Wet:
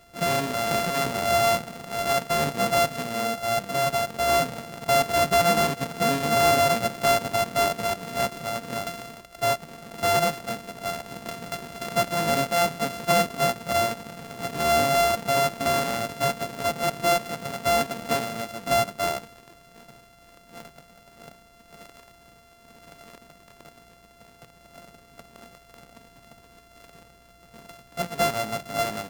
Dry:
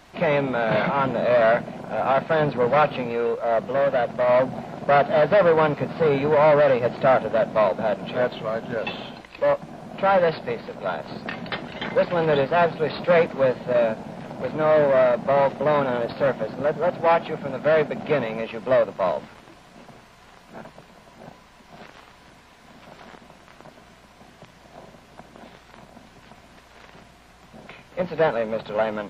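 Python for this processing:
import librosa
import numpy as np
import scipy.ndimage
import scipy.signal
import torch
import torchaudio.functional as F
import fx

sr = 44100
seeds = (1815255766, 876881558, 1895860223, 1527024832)

y = np.r_[np.sort(x[:len(x) // 64 * 64].reshape(-1, 64), axis=1).ravel(), x[len(x) // 64 * 64:]]
y = y * 10.0 ** (-3.5 / 20.0)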